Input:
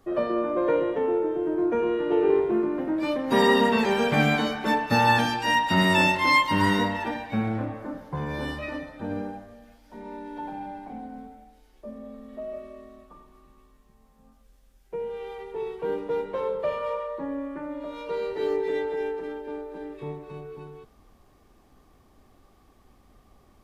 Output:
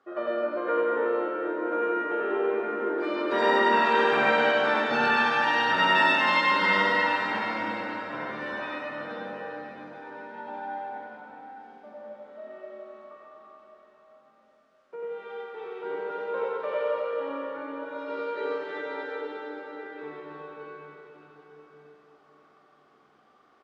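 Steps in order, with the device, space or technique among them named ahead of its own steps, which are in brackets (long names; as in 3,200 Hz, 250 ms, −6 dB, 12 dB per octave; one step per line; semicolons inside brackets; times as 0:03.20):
station announcement (band-pass filter 380–4,100 Hz; parametric band 1,400 Hz +12 dB 0.34 octaves; loudspeakers that aren't time-aligned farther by 16 metres −9 dB, 32 metres −1 dB; convolution reverb RT60 5.0 s, pre-delay 69 ms, DRR −1 dB)
level −6.5 dB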